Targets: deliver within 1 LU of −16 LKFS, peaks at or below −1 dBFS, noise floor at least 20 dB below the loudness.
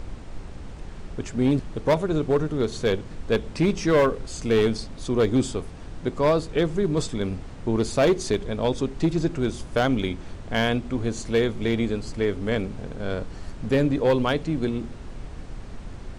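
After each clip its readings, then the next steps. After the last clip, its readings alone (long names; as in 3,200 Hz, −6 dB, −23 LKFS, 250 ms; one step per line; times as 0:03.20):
share of clipped samples 1.1%; peaks flattened at −14.0 dBFS; background noise floor −39 dBFS; target noise floor −45 dBFS; integrated loudness −25.0 LKFS; sample peak −14.0 dBFS; target loudness −16.0 LKFS
→ clipped peaks rebuilt −14 dBFS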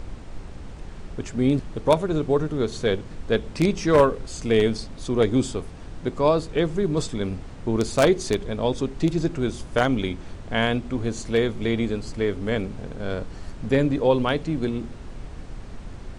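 share of clipped samples 0.0%; background noise floor −39 dBFS; target noise floor −44 dBFS
→ noise reduction from a noise print 6 dB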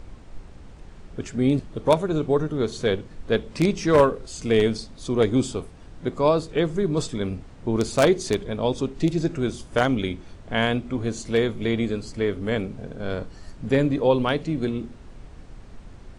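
background noise floor −45 dBFS; integrated loudness −24.0 LKFS; sample peak −5.0 dBFS; target loudness −16.0 LKFS
→ level +8 dB
brickwall limiter −1 dBFS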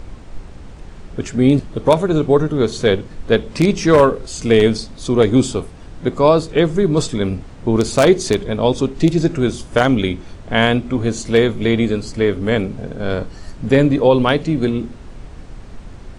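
integrated loudness −16.5 LKFS; sample peak −1.0 dBFS; background noise floor −37 dBFS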